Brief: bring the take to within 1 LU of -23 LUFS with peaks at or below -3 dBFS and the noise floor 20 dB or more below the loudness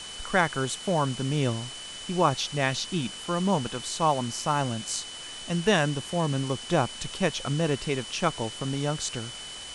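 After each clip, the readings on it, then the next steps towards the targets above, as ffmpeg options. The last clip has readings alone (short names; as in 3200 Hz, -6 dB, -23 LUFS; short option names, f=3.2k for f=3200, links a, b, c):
steady tone 3000 Hz; tone level -40 dBFS; noise floor -40 dBFS; noise floor target -48 dBFS; loudness -28.0 LUFS; peak -8.5 dBFS; loudness target -23.0 LUFS
-> -af "bandreject=f=3k:w=30"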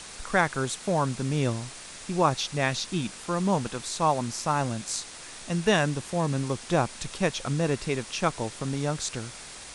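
steady tone none; noise floor -43 dBFS; noise floor target -48 dBFS
-> -af "afftdn=nr=6:nf=-43"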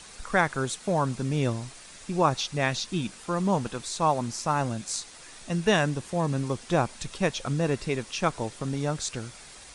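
noise floor -47 dBFS; noise floor target -48 dBFS
-> -af "afftdn=nr=6:nf=-47"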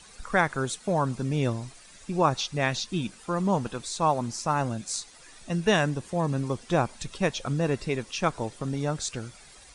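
noise floor -51 dBFS; loudness -28.0 LUFS; peak -8.5 dBFS; loudness target -23.0 LUFS
-> -af "volume=5dB"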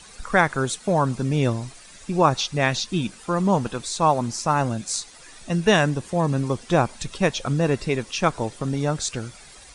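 loudness -23.0 LUFS; peak -3.5 dBFS; noise floor -46 dBFS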